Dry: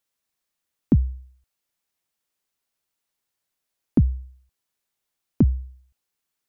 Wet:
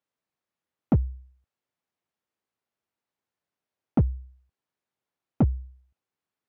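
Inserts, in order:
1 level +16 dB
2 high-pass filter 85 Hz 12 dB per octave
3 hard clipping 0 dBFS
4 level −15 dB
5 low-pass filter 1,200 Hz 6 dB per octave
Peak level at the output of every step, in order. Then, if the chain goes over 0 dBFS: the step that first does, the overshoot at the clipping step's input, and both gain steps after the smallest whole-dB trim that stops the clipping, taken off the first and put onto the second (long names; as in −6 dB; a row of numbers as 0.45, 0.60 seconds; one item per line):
+8.0, +8.5, 0.0, −15.0, −15.0 dBFS
step 1, 8.5 dB
step 1 +7 dB, step 4 −6 dB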